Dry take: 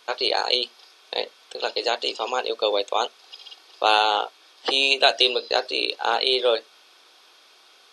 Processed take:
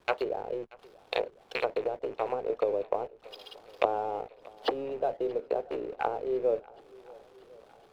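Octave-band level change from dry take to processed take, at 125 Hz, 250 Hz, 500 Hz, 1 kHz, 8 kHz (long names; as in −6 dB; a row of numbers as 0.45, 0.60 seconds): can't be measured, −3.5 dB, −4.5 dB, −10.0 dB, below −20 dB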